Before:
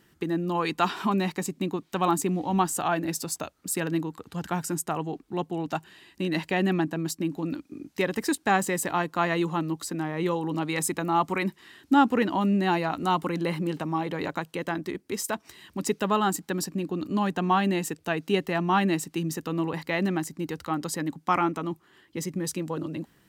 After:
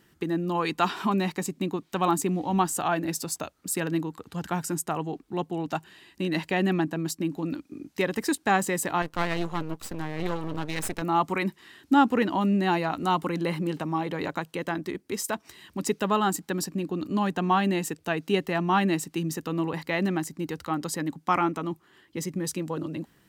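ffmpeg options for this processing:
-filter_complex "[0:a]asettb=1/sr,asplit=3[a][b][c];[a]atrim=end=9.024[d];[b]atrim=start=9.02:end=11.02,asetpts=PTS-STARTPTS,afade=t=in:d=0.004:c=qsin,afade=t=out:st=1.996:d=0.004:c=qsin,aeval=exprs='max(val(0),0)':c=same[e];[c]atrim=start=11.016[f];[d][e]acrossfade=d=0.004:c1=hsin:c2=qsin[g];[g][f]acrossfade=d=0.004:c1=qsin:c2=hsin"

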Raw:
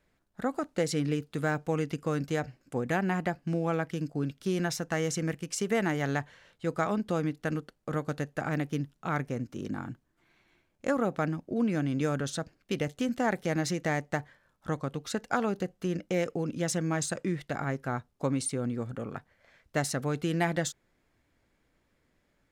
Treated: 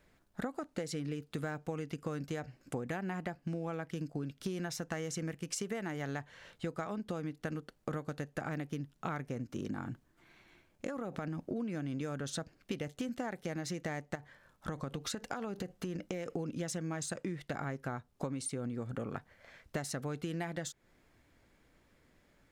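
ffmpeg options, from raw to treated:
-filter_complex "[0:a]asettb=1/sr,asplit=3[a][b][c];[a]atrim=end=9.834[d];[b]atrim=start=9.83:end=11.5,asetpts=PTS-STARTPTS,afade=t=in:d=0.004:c=qsin,afade=t=out:st=1.666:d=0.004:c=qsin,acompressor=threshold=-35dB:ratio=6:attack=3.2:release=140:knee=1:detection=peak[e];[c]atrim=start=11.496[f];[d][e]acrossfade=d=0.004:c1=hsin:c2=qsin[g];[g][f]acrossfade=d=0.004:c1=qsin:c2=hsin,asettb=1/sr,asplit=3[h][i][j];[h]atrim=end=14.154[k];[i]atrim=start=14.15:end=16.36,asetpts=PTS-STARTPTS,afade=t=in:d=0.004:c=qsin,afade=t=out:st=2.206:d=0.004:c=qsin,acompressor=threshold=-35dB:ratio=6:attack=3.2:release=140:knee=1:detection=peak[l];[j]atrim=start=16.356[m];[k][l]acrossfade=d=0.004:c1=hsin:c2=qsin[n];[n][m]acrossfade=d=0.004:c1=qsin:c2=hsin,acompressor=threshold=-39dB:ratio=12,volume=4.5dB"

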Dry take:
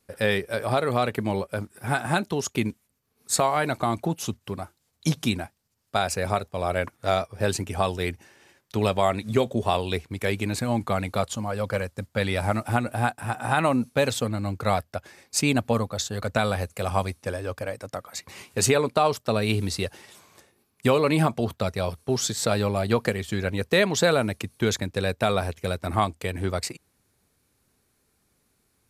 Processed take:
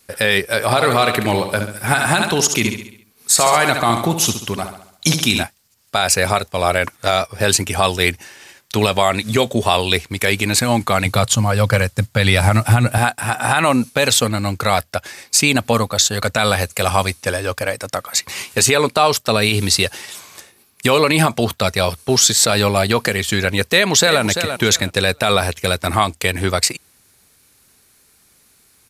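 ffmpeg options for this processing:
-filter_complex "[0:a]asettb=1/sr,asplit=3[a][b][c];[a]atrim=end=0.644[d];[b]atrim=start=0.64:end=5.43,asetpts=PTS-STARTPTS,afade=t=in:d=0.004:c=qsin,afade=t=out:st=4.786:d=0.004:c=qsin,aecho=1:1:68|136|204|272|340|408:0.376|0.184|0.0902|0.0442|0.0217|0.0106,atrim=end_sample=211239[e];[c]atrim=start=5.426[f];[d][e]acrossfade=d=0.004:c1=hsin:c2=qsin[g];[g][f]acrossfade=d=0.004:c1=qsin:c2=hsin,asettb=1/sr,asplit=3[h][i][j];[h]atrim=end=11.054[k];[i]atrim=start=11.05:end=12.98,asetpts=PTS-STARTPTS,afade=t=in:d=0.004:c=qsin,afade=t=out:st=1.926:d=0.004:c=qsin,equalizer=f=120:w=1.5:g=12[l];[j]atrim=start=12.976[m];[k][l]acrossfade=d=0.004:c1=hsin:c2=qsin[n];[n][m]acrossfade=d=0.004:c1=qsin:c2=hsin,asplit=2[o][p];[p]afade=t=in:st=23.7:d=0.01,afade=t=out:st=24.22:d=0.01,aecho=0:1:340|680|1020:0.251189|0.0502377|0.0100475[q];[o][q]amix=inputs=2:normalize=0,tiltshelf=f=1.2k:g=-5.5,alimiter=level_in=13.5dB:limit=-1dB:release=50:level=0:latency=1,volume=-1dB"

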